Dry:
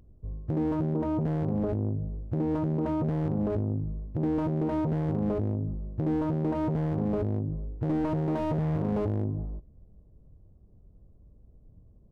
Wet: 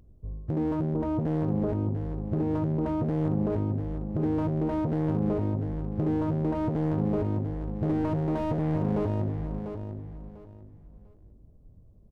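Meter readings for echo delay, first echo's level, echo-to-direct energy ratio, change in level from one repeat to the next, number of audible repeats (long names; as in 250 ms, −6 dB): 696 ms, −8.0 dB, −7.5 dB, −12.0 dB, 3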